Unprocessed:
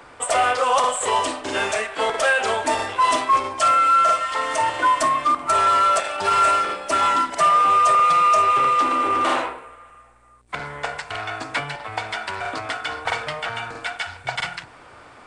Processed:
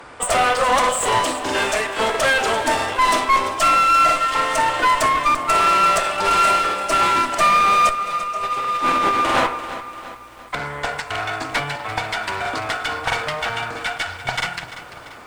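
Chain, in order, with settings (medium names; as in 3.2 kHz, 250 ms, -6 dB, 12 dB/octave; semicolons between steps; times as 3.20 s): 7.89–9.47 s: compressor with a negative ratio -22 dBFS, ratio -0.5; one-sided clip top -26 dBFS; bit-crushed delay 342 ms, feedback 55%, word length 8-bit, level -13 dB; trim +4.5 dB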